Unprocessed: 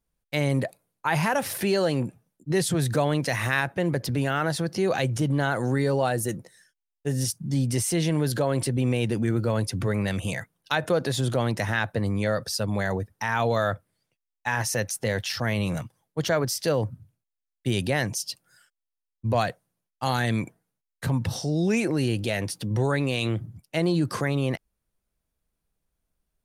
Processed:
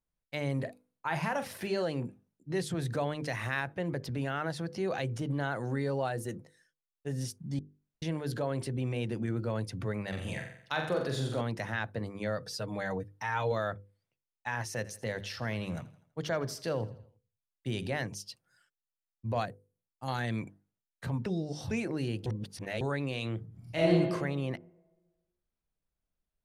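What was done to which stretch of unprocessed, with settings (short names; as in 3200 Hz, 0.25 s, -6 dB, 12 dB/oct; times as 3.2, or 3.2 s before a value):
0.55–1.83 doubler 44 ms -10.5 dB
7.59–8.02 room tone
10.08–11.41 flutter echo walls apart 7.6 m, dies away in 0.62 s
12.42–13.52 comb 6.5 ms
14.68–17.99 feedback echo 82 ms, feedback 47%, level -18.5 dB
19.45–20.08 EQ curve 270 Hz 0 dB, 3500 Hz -14 dB, 10000 Hz +2 dB
21.26–21.71 reverse
22.26–22.81 reverse
23.48–23.89 reverb throw, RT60 1.3 s, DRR -8 dB
whole clip: high shelf 7000 Hz -11 dB; notches 50/100/150/200/250/300/350/400/450/500 Hz; gain -8 dB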